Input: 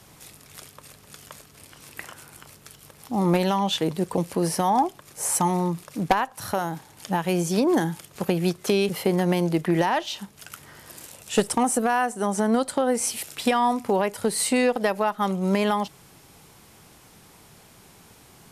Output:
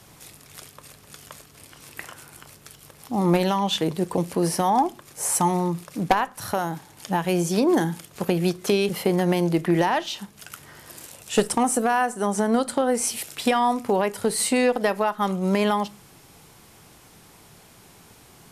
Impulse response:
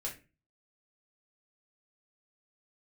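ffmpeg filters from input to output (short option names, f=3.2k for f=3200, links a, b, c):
-filter_complex "[0:a]asplit=2[a][b];[1:a]atrim=start_sample=2205,asetrate=34839,aresample=44100[c];[b][c]afir=irnorm=-1:irlink=0,volume=-16.5dB[d];[a][d]amix=inputs=2:normalize=0"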